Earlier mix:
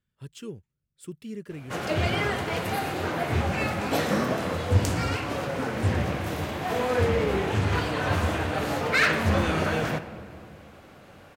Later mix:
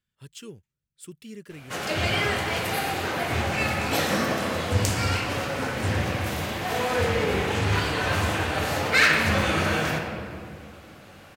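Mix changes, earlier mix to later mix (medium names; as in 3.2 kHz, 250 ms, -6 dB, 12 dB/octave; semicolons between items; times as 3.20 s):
background: send +10.5 dB; master: add tilt shelf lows -4.5 dB, about 1.5 kHz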